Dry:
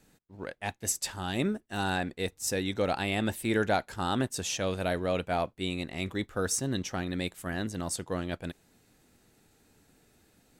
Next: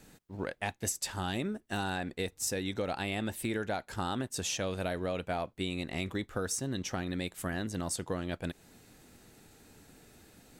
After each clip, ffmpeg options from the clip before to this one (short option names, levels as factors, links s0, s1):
-af "acompressor=threshold=0.0126:ratio=6,volume=2.11"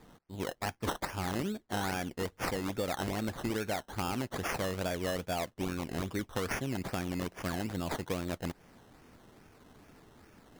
-af "acrusher=samples=15:mix=1:aa=0.000001:lfo=1:lforange=9:lforate=2.4"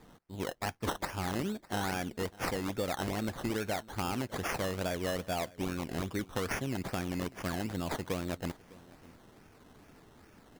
-af "aecho=1:1:604:0.0794"